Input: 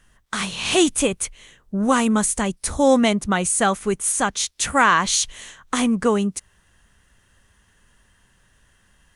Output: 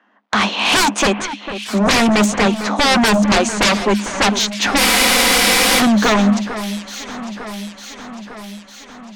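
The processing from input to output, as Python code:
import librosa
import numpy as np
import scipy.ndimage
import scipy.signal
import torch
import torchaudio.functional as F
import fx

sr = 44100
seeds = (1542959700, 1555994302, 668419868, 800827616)

p1 = fx.law_mismatch(x, sr, coded='A')
p2 = scipy.signal.sosfilt(scipy.signal.butter(4, 6500.0, 'lowpass', fs=sr, output='sos'), p1)
p3 = fx.env_lowpass(p2, sr, base_hz=2200.0, full_db=-15.0)
p4 = scipy.signal.sosfilt(scipy.signal.cheby1(6, 9, 200.0, 'highpass', fs=sr, output='sos'), p3)
p5 = fx.fold_sine(p4, sr, drive_db=18, ceiling_db=-8.5)
p6 = p5 + fx.echo_alternate(p5, sr, ms=451, hz=2100.0, feedback_pct=77, wet_db=-11, dry=0)
p7 = fx.spec_freeze(p6, sr, seeds[0], at_s=4.81, hold_s=0.98)
y = p7 * librosa.db_to_amplitude(-1.5)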